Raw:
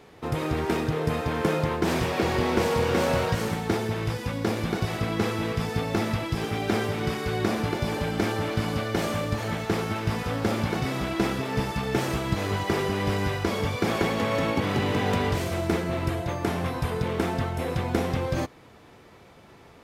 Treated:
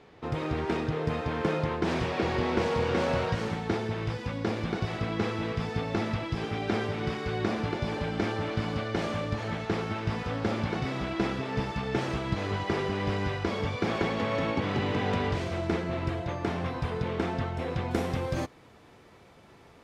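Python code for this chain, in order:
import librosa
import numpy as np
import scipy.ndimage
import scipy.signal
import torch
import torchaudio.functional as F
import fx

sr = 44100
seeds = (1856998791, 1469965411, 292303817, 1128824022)

y = fx.lowpass(x, sr, hz=fx.steps((0.0, 5000.0), (17.91, 12000.0)), slope=12)
y = y * librosa.db_to_amplitude(-3.5)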